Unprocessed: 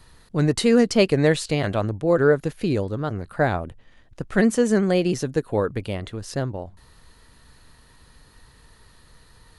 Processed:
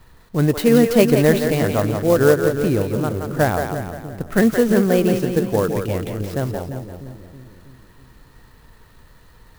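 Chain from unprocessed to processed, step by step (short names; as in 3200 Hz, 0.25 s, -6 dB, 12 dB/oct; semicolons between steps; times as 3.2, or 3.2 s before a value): high shelf 4700 Hz -10 dB; split-band echo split 380 Hz, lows 0.323 s, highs 0.173 s, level -6 dB; clock jitter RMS 0.035 ms; gain +3 dB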